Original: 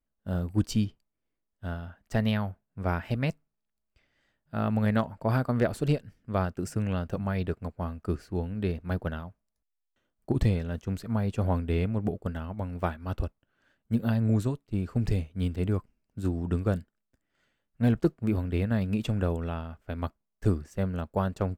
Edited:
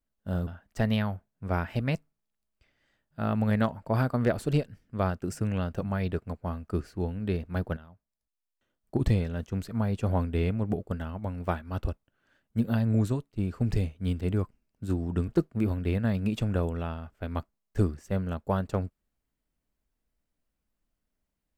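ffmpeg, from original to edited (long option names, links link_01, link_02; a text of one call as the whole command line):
ffmpeg -i in.wav -filter_complex "[0:a]asplit=4[link_01][link_02][link_03][link_04];[link_01]atrim=end=0.472[link_05];[link_02]atrim=start=1.818:end=9.12,asetpts=PTS-STARTPTS,afade=type=out:start_time=7.298:duration=0.004:curve=hsin:silence=0.16788[link_06];[link_03]atrim=start=9.12:end=16.632,asetpts=PTS-STARTPTS,afade=type=in:duration=1.25:silence=0.16788[link_07];[link_04]atrim=start=17.948[link_08];[link_06][link_07]concat=n=2:v=0:a=1[link_09];[link_05][link_09]acrossfade=duration=0.004:curve1=hsin:curve2=hsin[link_10];[link_10][link_08]acrossfade=duration=0.004:curve1=hsin:curve2=hsin" out.wav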